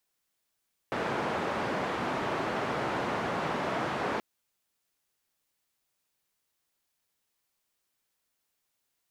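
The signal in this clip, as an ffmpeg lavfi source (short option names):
-f lavfi -i "anoisesrc=c=white:d=3.28:r=44100:seed=1,highpass=f=130,lowpass=f=1100,volume=-13.6dB"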